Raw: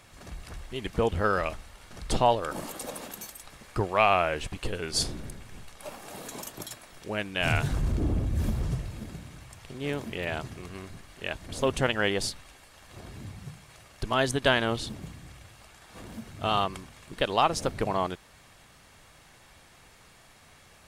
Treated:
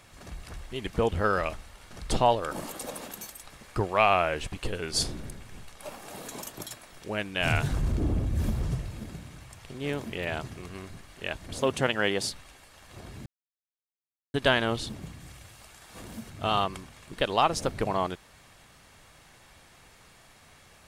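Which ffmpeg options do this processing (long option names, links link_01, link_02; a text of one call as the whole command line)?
ffmpeg -i in.wav -filter_complex "[0:a]asettb=1/sr,asplit=3[link_01][link_02][link_03];[link_01]atrim=end=11.594[link_04];[link_02]atrim=start=11.59:end=12.31,asetpts=PTS-STARTPTS,afade=type=in:duration=0.004:curve=qsin,afade=type=out:start_time=0.716:duration=0.004:curve=qsin,highpass=110[link_05];[link_03]atrim=start=12.306[link_06];[link_04][link_05]acrossfade=duration=0.004:curve1=hsin:curve2=qsin[link_07];[link_07][link_06]acrossfade=duration=0.004:curve1=qsin:curve2=hsin,asettb=1/sr,asplit=3[link_08][link_09][link_10];[link_08]atrim=end=15.204[link_11];[link_09]atrim=start=15.2:end=16.3,asetpts=PTS-STARTPTS,afade=type=in:duration=0.004:curve=qsin,afade=type=out:start_time=1.096:duration=0.004:curve=qsin,highshelf=frequency=5200:gain=6[link_12];[link_10]atrim=start=16.296[link_13];[link_11][link_12]acrossfade=duration=0.004:curve1=hsin:curve2=qsin[link_14];[link_14][link_13]acrossfade=duration=0.004:curve1=qsin:curve2=hsin,asplit=3[link_15][link_16][link_17];[link_15]atrim=end=13.26,asetpts=PTS-STARTPTS,afade=type=out:start_time=13.256:duration=0.004:curve=hsin[link_18];[link_16]atrim=start=13.26:end=14.34,asetpts=PTS-STARTPTS,volume=0[link_19];[link_17]atrim=start=14.34,asetpts=PTS-STARTPTS,afade=type=in:duration=0.004:curve=hsin[link_20];[link_18][link_19][link_20]concat=n=3:v=0:a=1" out.wav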